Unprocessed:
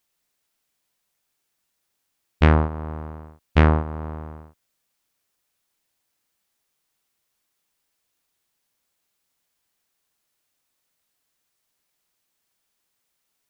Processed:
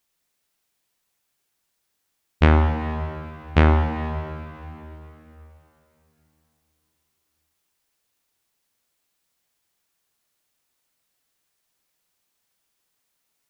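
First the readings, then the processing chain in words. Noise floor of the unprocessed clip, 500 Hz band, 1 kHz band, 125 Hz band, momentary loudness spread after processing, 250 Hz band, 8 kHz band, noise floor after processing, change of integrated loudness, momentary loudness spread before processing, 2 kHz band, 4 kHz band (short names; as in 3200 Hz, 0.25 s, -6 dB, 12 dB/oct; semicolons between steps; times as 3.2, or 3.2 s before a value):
-76 dBFS, +0.5 dB, +1.5 dB, +1.0 dB, 20 LU, +0.5 dB, n/a, -75 dBFS, -0.5 dB, 19 LU, +1.0 dB, +1.5 dB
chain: plate-style reverb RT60 3.4 s, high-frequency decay 0.95×, DRR 5.5 dB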